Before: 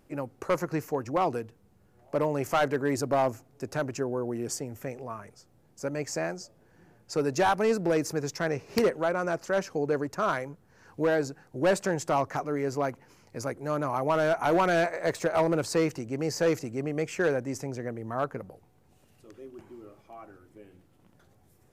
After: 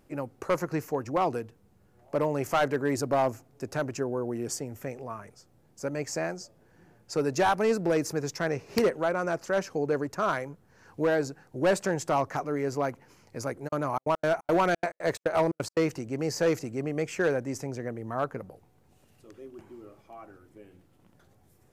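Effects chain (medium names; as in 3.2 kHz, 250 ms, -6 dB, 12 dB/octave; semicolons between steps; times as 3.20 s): 13.67–15.93 s: trance gate "xx.x.xx.x" 176 bpm -60 dB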